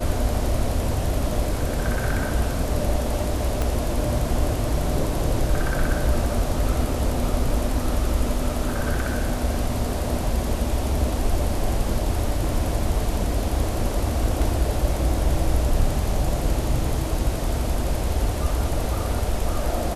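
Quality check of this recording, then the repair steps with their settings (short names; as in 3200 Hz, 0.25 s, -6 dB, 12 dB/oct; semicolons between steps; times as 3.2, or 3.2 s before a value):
3.62 pop -11 dBFS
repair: de-click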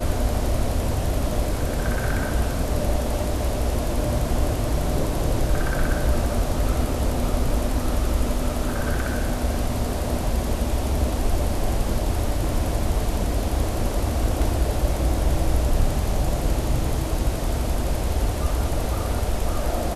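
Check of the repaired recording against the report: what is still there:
3.62 pop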